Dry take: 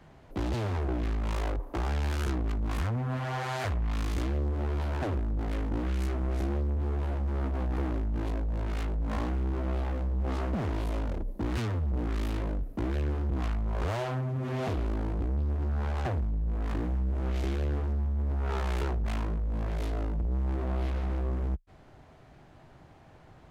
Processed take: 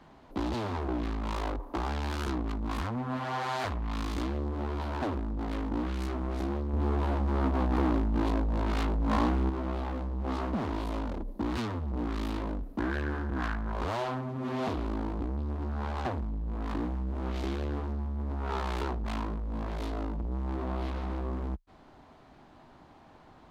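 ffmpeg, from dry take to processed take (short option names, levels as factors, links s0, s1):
-filter_complex "[0:a]asettb=1/sr,asplit=3[s0][s1][s2];[s0]atrim=end=6.734[s3];[s1]atrim=start=6.73:end=9.5,asetpts=PTS-STARTPTS,afade=t=in:d=0.004:c=qsin,afade=t=out:st=2.766:d=0.004:c=qsin,acontrast=36[s4];[s2]atrim=start=9.496[s5];[s3][s4]acrossfade=d=0.004:c1=hsin:c2=qsin[s6];[s6][s5]acrossfade=d=0.004:c1=qsin:c2=hsin,asettb=1/sr,asplit=3[s7][s8][s9];[s7]atrim=end=12.794[s10];[s8]atrim=start=12.79:end=13.72,asetpts=PTS-STARTPTS,afade=t=in:d=0.004:c=qsin,afade=t=out:st=0.926:d=0.004:c=qsin,equalizer=f=1600:t=o:w=0.43:g=14.5[s11];[s9]atrim=start=13.716[s12];[s10][s11]acrossfade=d=0.004:c1=hsin:c2=qsin[s13];[s13][s12]acrossfade=d=0.004:c1=qsin:c2=hsin,equalizer=f=125:t=o:w=1:g=-5,equalizer=f=250:t=o:w=1:g=8,equalizer=f=1000:t=o:w=1:g=8,equalizer=f=4000:t=o:w=1:g=6,volume=0.631"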